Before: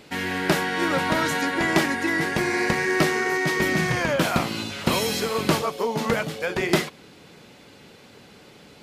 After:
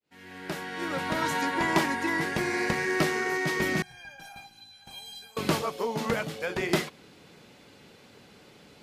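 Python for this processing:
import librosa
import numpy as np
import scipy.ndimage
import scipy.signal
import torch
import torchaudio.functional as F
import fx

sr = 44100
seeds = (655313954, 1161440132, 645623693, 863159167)

y = fx.fade_in_head(x, sr, length_s=1.4)
y = fx.peak_eq(y, sr, hz=970.0, db=10.0, octaves=0.2, at=(1.22, 2.22))
y = fx.comb_fb(y, sr, f0_hz=800.0, decay_s=0.16, harmonics='all', damping=0.0, mix_pct=100, at=(3.82, 5.37))
y = y * librosa.db_to_amplitude(-5.0)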